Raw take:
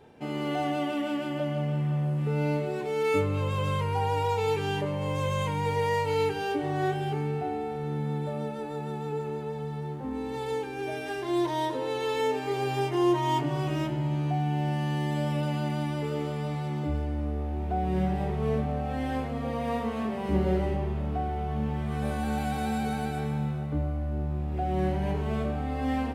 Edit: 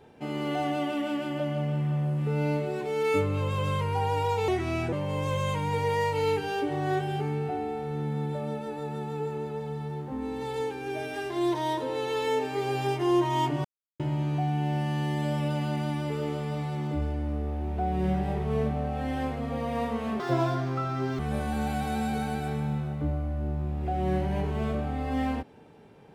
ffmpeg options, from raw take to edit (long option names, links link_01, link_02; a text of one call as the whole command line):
ffmpeg -i in.wav -filter_complex "[0:a]asplit=7[link_01][link_02][link_03][link_04][link_05][link_06][link_07];[link_01]atrim=end=4.484[link_08];[link_02]atrim=start=4.48:end=4.85,asetpts=PTS-STARTPTS,asetrate=36603,aresample=44100,atrim=end_sample=19659,asetpts=PTS-STARTPTS[link_09];[link_03]atrim=start=4.846:end=13.57,asetpts=PTS-STARTPTS,afade=type=out:start_time=8.72:duration=0.004:curve=hsin[link_10];[link_04]atrim=start=13.57:end=13.92,asetpts=PTS-STARTPTS,volume=0[link_11];[link_05]atrim=start=13.92:end=20.124,asetpts=PTS-STARTPTS,afade=type=in:duration=0.004:curve=hsin[link_12];[link_06]atrim=start=20.12:end=21.9,asetpts=PTS-STARTPTS,asetrate=78939,aresample=44100[link_13];[link_07]atrim=start=21.896[link_14];[link_08][link_09]acrossfade=duration=0.004:curve1=hsin:curve2=hsin[link_15];[link_10][link_11][link_12]concat=n=3:v=0:a=1[link_16];[link_15][link_16]acrossfade=duration=0.004:curve1=hsin:curve2=hsin[link_17];[link_17][link_13]acrossfade=duration=0.004:curve1=hsin:curve2=hsin[link_18];[link_18][link_14]acrossfade=duration=0.004:curve1=hsin:curve2=hsin" out.wav